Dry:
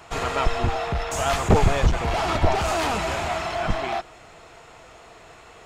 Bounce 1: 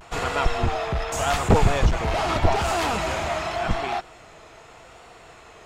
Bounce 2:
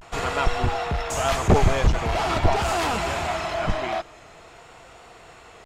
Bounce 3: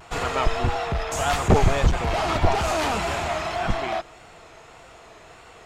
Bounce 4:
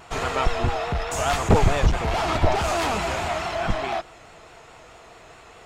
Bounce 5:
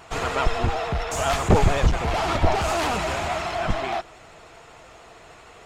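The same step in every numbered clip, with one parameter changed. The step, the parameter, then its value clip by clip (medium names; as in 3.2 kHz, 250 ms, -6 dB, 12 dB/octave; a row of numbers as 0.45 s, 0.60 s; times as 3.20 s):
vibrato, rate: 0.84 Hz, 0.45 Hz, 1.7 Hz, 4.7 Hz, 13 Hz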